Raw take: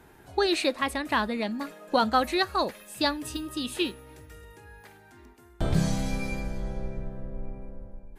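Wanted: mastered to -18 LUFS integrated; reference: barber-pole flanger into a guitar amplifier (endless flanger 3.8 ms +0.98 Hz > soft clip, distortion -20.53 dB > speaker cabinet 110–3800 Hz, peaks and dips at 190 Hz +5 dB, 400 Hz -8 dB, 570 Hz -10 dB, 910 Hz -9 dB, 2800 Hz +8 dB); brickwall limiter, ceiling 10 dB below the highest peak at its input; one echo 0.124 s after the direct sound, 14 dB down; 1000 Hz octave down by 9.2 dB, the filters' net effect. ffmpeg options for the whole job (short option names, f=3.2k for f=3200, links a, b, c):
-filter_complex "[0:a]equalizer=f=1k:t=o:g=-7,alimiter=limit=-22.5dB:level=0:latency=1,aecho=1:1:124:0.2,asplit=2[a][b];[b]adelay=3.8,afreqshift=0.98[c];[a][c]amix=inputs=2:normalize=1,asoftclip=threshold=-26dB,highpass=110,equalizer=f=190:t=q:w=4:g=5,equalizer=f=400:t=q:w=4:g=-8,equalizer=f=570:t=q:w=4:g=-10,equalizer=f=910:t=q:w=4:g=-9,equalizer=f=2.8k:t=q:w=4:g=8,lowpass=f=3.8k:w=0.5412,lowpass=f=3.8k:w=1.3066,volume=21dB"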